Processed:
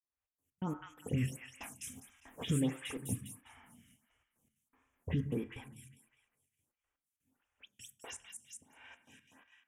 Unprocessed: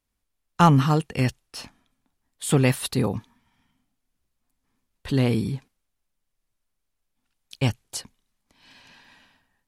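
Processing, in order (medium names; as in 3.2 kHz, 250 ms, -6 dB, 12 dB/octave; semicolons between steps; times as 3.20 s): delay that grows with frequency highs late, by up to 115 ms; Doppler pass-by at 2.02 s, 8 m/s, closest 1.6 m; recorder AGC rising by 50 dB/s; high-pass 62 Hz; treble shelf 12 kHz -4 dB; in parallel at -2 dB: peak limiter -27.5 dBFS, peak gain reduction 11.5 dB; on the sum: trance gate "xx.x.x..xx" 121 bpm -60 dB; vibrato 0.44 Hz 94 cents; Butterworth band-stop 4.4 kHz, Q 1.4; feedback echo behind a high-pass 202 ms, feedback 41%, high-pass 2.2 kHz, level -3 dB; reverberation RT60 0.70 s, pre-delay 5 ms, DRR 10 dB; lamp-driven phase shifter 1.5 Hz; trim -5 dB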